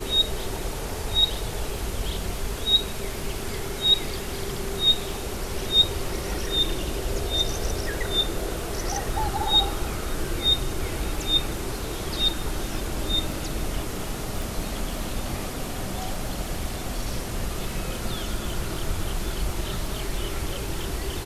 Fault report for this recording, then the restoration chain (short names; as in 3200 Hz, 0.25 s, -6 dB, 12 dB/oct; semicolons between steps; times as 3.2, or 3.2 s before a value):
crackle 22/s -34 dBFS
14.42 pop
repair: de-click